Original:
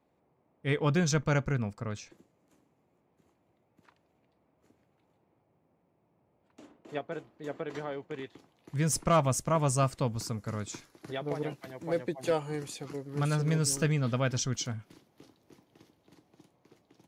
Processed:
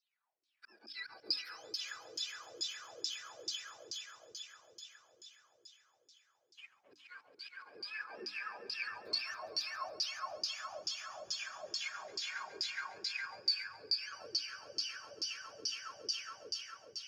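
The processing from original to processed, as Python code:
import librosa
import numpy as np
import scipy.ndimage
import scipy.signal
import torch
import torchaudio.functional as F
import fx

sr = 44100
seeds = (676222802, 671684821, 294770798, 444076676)

y = fx.octave_mirror(x, sr, pivot_hz=850.0)
y = fx.auto_swell(y, sr, attack_ms=710.0)
y = fx.peak_eq(y, sr, hz=11000.0, db=6.0, octaves=2.5)
y = fx.fold_sine(y, sr, drive_db=3, ceiling_db=-19.0)
y = librosa.effects.preemphasis(y, coef=0.8, zi=[0.0])
y = fx.leveller(y, sr, passes=2)
y = fx.echo_swell(y, sr, ms=138, loudest=5, wet_db=-3.0)
y = fx.rider(y, sr, range_db=4, speed_s=0.5)
y = fx.filter_lfo_bandpass(y, sr, shape='saw_down', hz=2.3, low_hz=330.0, high_hz=5000.0, q=6.4)
y = fx.hum_notches(y, sr, base_hz=50, count=6)
y = y * 10.0 ** (1.0 / 20.0)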